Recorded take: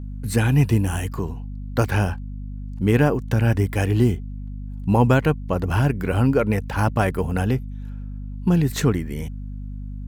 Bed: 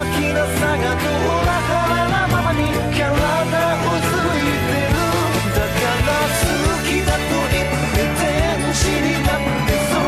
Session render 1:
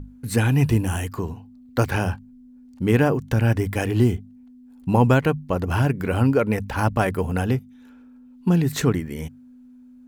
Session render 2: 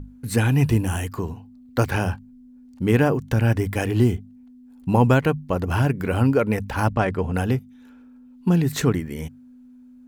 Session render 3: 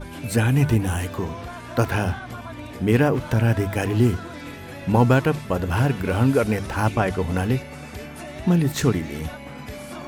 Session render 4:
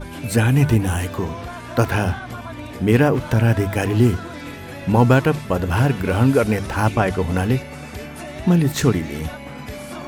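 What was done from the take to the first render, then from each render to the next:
hum notches 50/100/150/200 Hz
6.93–7.34 s: distance through air 91 m
add bed -18.5 dB
trim +3 dB; peak limiter -3 dBFS, peak gain reduction 2 dB

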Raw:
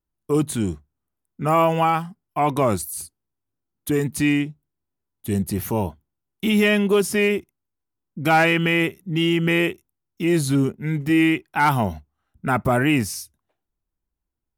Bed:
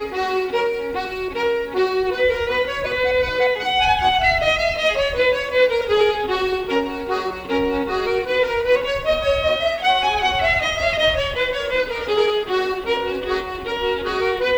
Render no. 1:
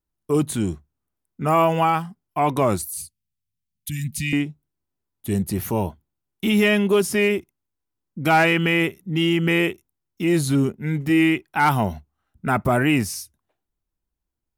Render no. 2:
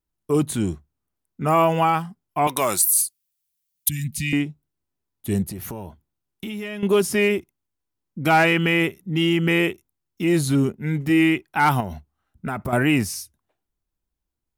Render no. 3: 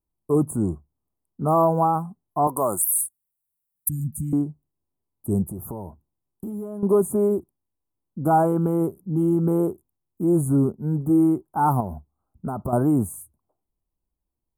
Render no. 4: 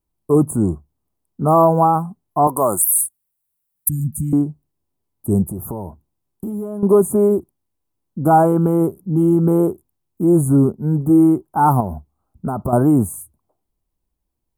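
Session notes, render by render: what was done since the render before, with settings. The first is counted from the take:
2.95–4.33 s: inverse Chebyshev band-stop 440–1000 Hz, stop band 60 dB
2.47–3.89 s: tilt EQ +4 dB/octave; 5.47–6.83 s: compression, threshold -29 dBFS; 11.80–12.73 s: compression, threshold -23 dBFS
inverse Chebyshev band-stop 1.8–5.6 kHz, stop band 40 dB; treble shelf 5.1 kHz -3.5 dB
trim +6 dB; peak limiter -2 dBFS, peak gain reduction 1.5 dB

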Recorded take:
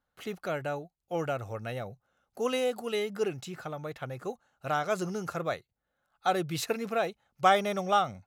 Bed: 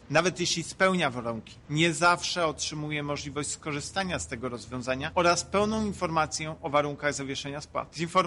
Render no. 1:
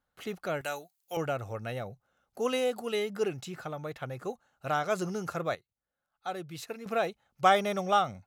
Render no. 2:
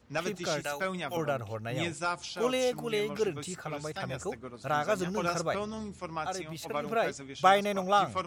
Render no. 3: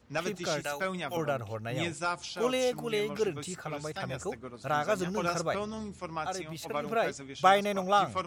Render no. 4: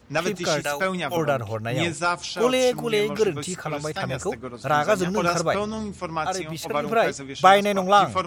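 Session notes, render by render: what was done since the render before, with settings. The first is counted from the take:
0.61–1.17 s: tilt EQ +4.5 dB/octave; 5.55–6.86 s: gain -9 dB
add bed -10 dB
no audible change
trim +8.5 dB; peak limiter -2 dBFS, peak gain reduction 1.5 dB

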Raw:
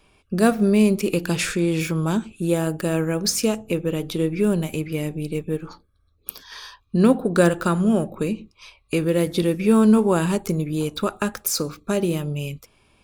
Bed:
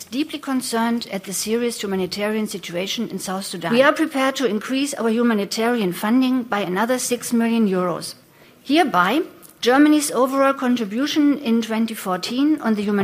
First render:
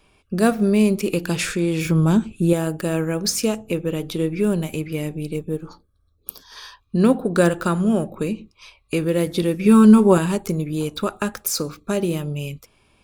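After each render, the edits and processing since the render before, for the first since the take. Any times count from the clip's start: 1.85–2.53 s: bass shelf 320 Hz +8.5 dB; 5.36–6.57 s: peaking EQ 2.2 kHz -9.5 dB 1.2 oct; 9.65–10.18 s: comb 5.3 ms, depth 99%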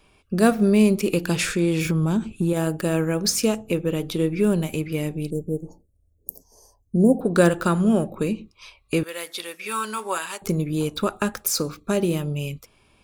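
1.75–2.57 s: compression, threshold -17 dBFS; 5.30–7.21 s: elliptic band-stop 700–6700 Hz; 9.03–10.42 s: high-pass 1.1 kHz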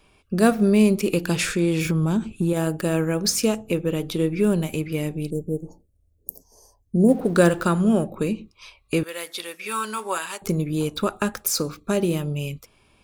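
7.08–7.63 s: companding laws mixed up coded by mu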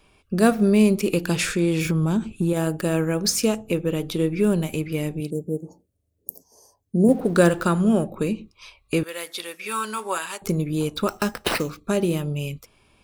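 5.20–7.09 s: high-pass 120 Hz; 11.08–11.70 s: sample-rate reducer 6.8 kHz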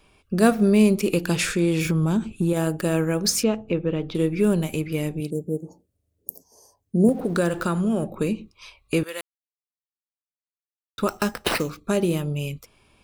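3.43–4.15 s: distance through air 230 m; 7.09–8.03 s: compression 2:1, threshold -21 dBFS; 9.21–10.98 s: mute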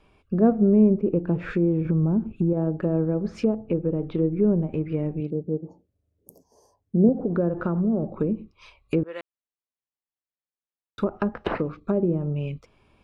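low-pass 1.7 kHz 6 dB/octave; low-pass that closes with the level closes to 660 Hz, closed at -19.5 dBFS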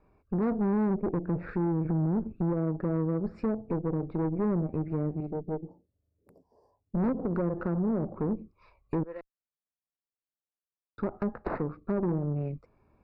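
valve stage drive 24 dB, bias 0.7; boxcar filter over 14 samples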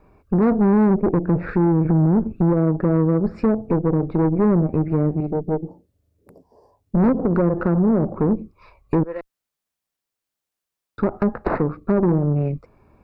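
trim +11 dB

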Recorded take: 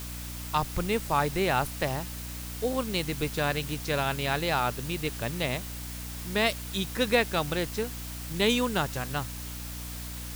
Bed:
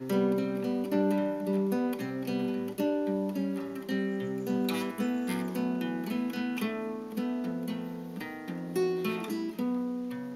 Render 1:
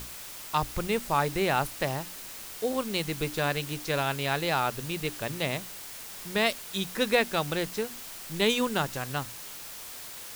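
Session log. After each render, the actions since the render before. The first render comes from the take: hum notches 60/120/180/240/300 Hz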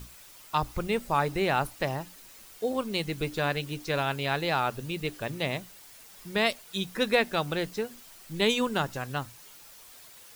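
noise reduction 10 dB, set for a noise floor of -42 dBFS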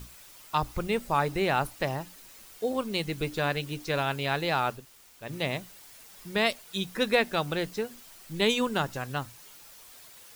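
4.78–5.26 s: room tone, crossfade 0.16 s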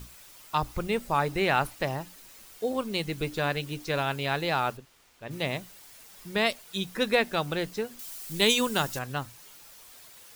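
1.26–1.75 s: dynamic bell 2.1 kHz, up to +4 dB, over -39 dBFS, Q 0.72; 4.77–5.31 s: treble shelf 6.1 kHz -11 dB; 7.99–8.99 s: treble shelf 4 kHz +11.5 dB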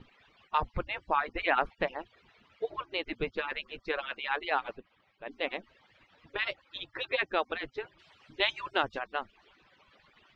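harmonic-percussive separation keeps percussive; low-pass 3.2 kHz 24 dB/octave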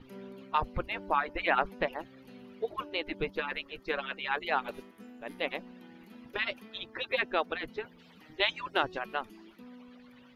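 add bed -19.5 dB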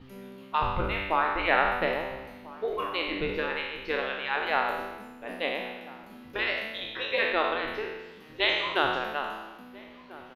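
spectral sustain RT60 1.18 s; echo from a far wall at 230 m, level -18 dB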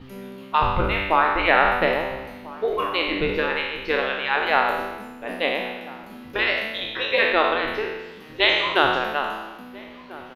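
trim +7 dB; peak limiter -3 dBFS, peak gain reduction 2 dB

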